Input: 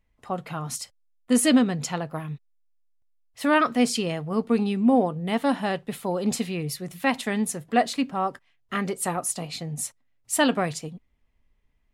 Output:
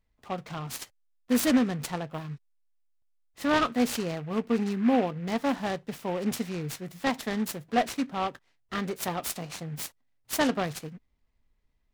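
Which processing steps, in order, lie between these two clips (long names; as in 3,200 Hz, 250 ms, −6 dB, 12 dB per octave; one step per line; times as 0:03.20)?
dynamic equaliser 2,800 Hz, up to −5 dB, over −45 dBFS, Q 3.7
short delay modulated by noise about 1,600 Hz, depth 0.051 ms
level −4 dB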